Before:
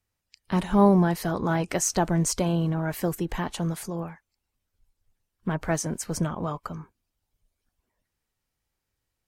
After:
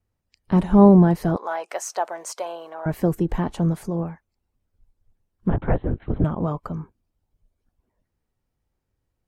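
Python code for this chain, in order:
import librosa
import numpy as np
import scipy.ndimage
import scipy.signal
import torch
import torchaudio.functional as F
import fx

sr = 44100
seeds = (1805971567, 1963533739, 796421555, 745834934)

y = fx.highpass(x, sr, hz=610.0, slope=24, at=(1.36, 2.86))
y = fx.lpc_vocoder(y, sr, seeds[0], excitation='whisper', order=10, at=(5.5, 6.24))
y = fx.tilt_shelf(y, sr, db=7.5, hz=1200.0)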